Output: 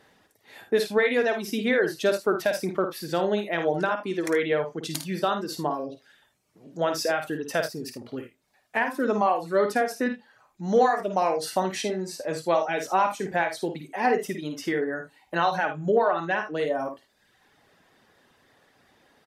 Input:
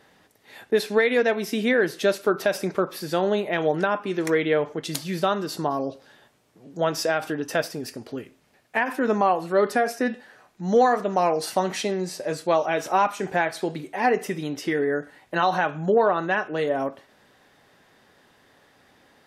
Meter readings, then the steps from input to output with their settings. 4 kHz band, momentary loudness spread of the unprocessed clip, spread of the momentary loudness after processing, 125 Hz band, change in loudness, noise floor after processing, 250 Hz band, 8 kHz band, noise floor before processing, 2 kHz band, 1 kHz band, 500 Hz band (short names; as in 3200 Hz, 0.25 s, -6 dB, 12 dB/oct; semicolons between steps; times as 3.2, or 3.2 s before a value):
-2.0 dB, 10 LU, 10 LU, -3.0 dB, -2.0 dB, -67 dBFS, -2.5 dB, -1.5 dB, -59 dBFS, -2.0 dB, -2.0 dB, -2.0 dB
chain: reverb removal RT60 0.86 s; early reflections 53 ms -7.5 dB, 78 ms -14.5 dB; gain -2 dB